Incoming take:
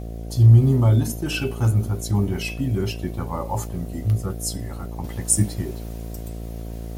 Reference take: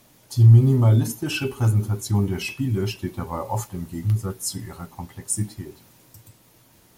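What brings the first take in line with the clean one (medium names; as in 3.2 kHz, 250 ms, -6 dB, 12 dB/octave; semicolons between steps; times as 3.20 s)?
de-hum 56.4 Hz, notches 13; gain correction -6.5 dB, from 5.04 s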